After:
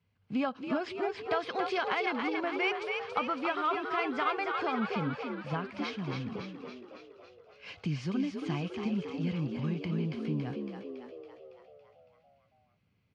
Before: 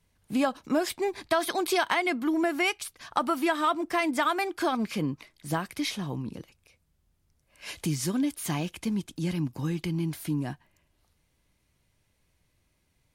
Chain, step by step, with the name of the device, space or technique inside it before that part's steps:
frequency-shifting delay pedal into a guitar cabinet (echo with shifted repeats 279 ms, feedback 60%, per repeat +59 Hz, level −5 dB; loudspeaker in its box 100–4,000 Hz, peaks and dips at 100 Hz +7 dB, 330 Hz −8 dB, 620 Hz −5 dB, 920 Hz −5 dB, 1,800 Hz −6 dB, 3,700 Hz −8 dB)
level −2.5 dB

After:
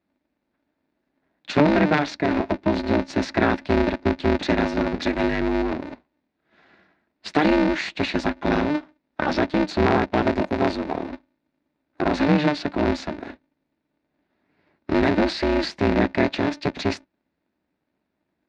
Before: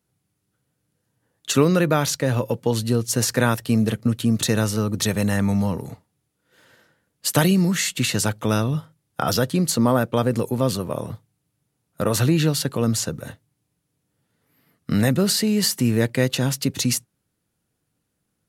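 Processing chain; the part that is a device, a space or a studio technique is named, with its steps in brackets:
ring modulator pedal into a guitar cabinet (ring modulator with a square carrier 150 Hz; loudspeaker in its box 96–3,700 Hz, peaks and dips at 120 Hz −8 dB, 190 Hz +6 dB, 460 Hz −5 dB, 1,200 Hz −6 dB, 3,100 Hz −9 dB)
0:09.88–0:10.99: high-shelf EQ 11,000 Hz +9.5 dB
level +1.5 dB

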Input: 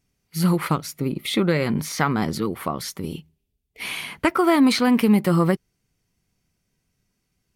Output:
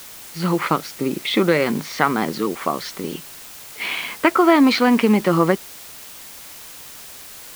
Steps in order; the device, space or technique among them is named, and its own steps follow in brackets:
dictaphone (band-pass filter 260–4,000 Hz; automatic gain control gain up to 4 dB; tape wow and flutter 25 cents; white noise bed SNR 18 dB)
level +2 dB

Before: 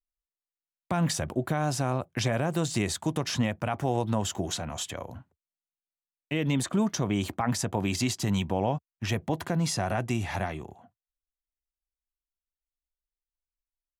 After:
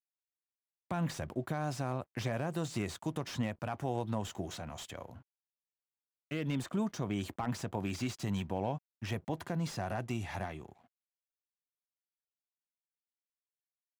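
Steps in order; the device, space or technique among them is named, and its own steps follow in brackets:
early transistor amplifier (dead-zone distortion −59.5 dBFS; slew-rate limiting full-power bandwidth 83 Hz)
level −7.5 dB

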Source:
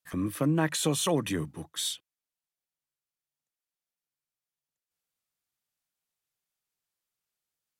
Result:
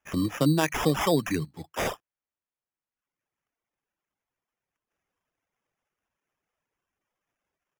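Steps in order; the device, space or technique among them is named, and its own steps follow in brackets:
crushed at another speed (tape speed factor 0.8×; decimation without filtering 13×; tape speed factor 1.25×)
reverb reduction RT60 1.1 s
level +4.5 dB

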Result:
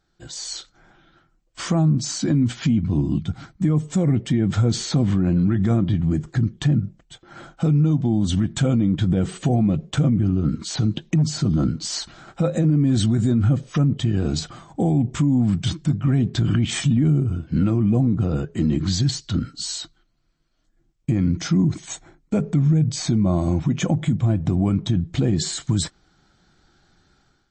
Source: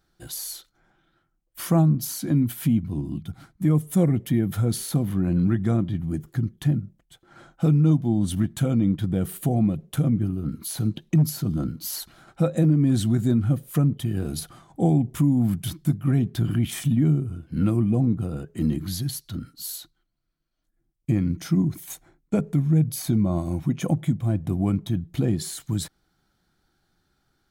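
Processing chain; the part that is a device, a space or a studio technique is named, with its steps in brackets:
low-bitrate web radio (automatic gain control gain up to 11 dB; brickwall limiter −11 dBFS, peak gain reduction 9.5 dB; MP3 32 kbit/s 24,000 Hz)

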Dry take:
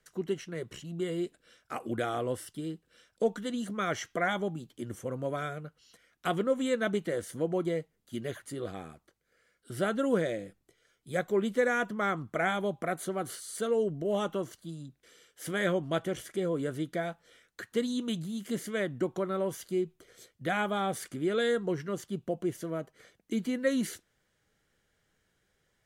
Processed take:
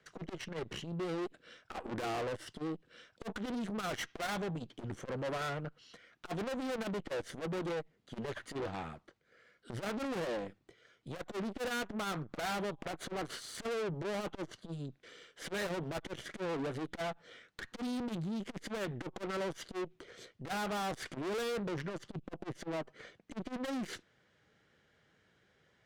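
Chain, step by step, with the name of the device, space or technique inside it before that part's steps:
valve radio (band-pass filter 86–4,200 Hz; tube saturation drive 44 dB, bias 0.75; saturating transformer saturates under 200 Hz)
level +10 dB

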